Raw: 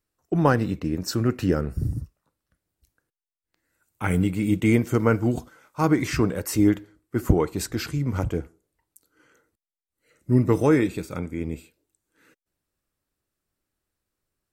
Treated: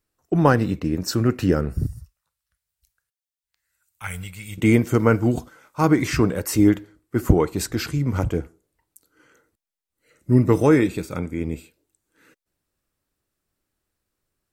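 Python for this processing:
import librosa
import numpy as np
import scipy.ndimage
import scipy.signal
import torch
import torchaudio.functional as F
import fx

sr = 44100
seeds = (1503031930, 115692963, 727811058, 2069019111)

y = fx.tone_stack(x, sr, knobs='10-0-10', at=(1.86, 4.58))
y = y * librosa.db_to_amplitude(3.0)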